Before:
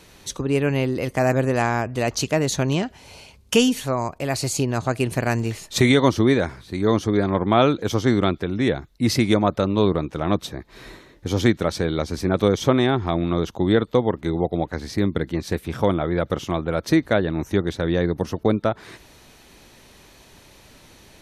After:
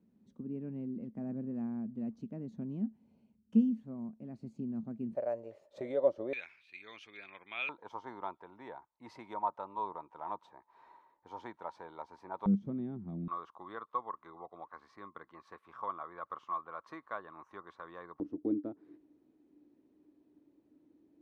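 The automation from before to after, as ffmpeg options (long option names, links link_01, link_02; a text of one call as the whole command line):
ffmpeg -i in.wav -af "asetnsamples=nb_out_samples=441:pad=0,asendcmd='5.15 bandpass f 570;6.33 bandpass f 2500;7.69 bandpass f 930;12.46 bandpass f 200;13.28 bandpass f 1100;18.2 bandpass f 300',bandpass=frequency=220:width_type=q:width=13:csg=0" out.wav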